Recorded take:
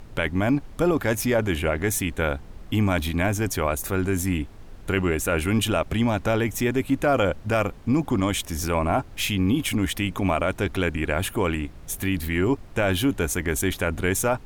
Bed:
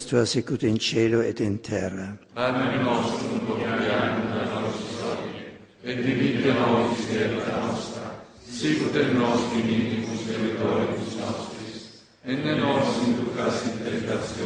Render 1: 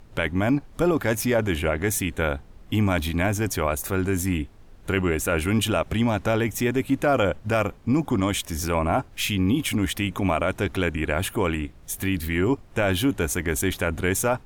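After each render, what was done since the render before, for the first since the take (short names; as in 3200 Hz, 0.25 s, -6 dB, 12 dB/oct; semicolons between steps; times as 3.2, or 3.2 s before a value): noise print and reduce 6 dB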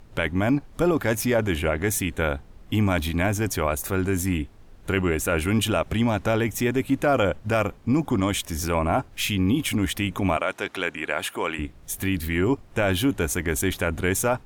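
10.37–11.59 weighting filter A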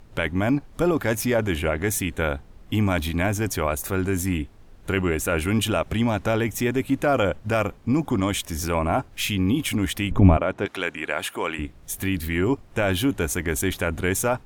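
10.11–10.66 tilt -4 dB/oct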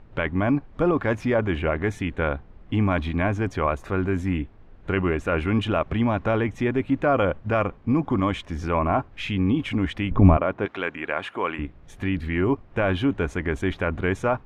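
LPF 2400 Hz 12 dB/oct; dynamic EQ 1100 Hz, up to +6 dB, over -45 dBFS, Q 7.2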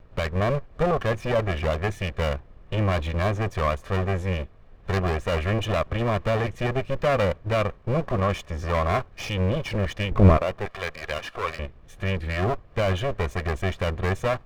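minimum comb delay 1.7 ms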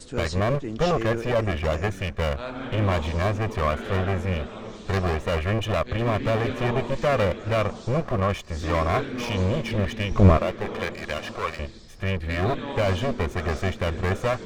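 add bed -10 dB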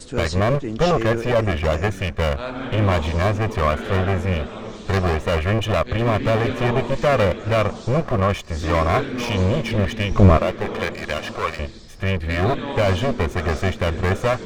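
gain +4.5 dB; limiter -3 dBFS, peak gain reduction 3 dB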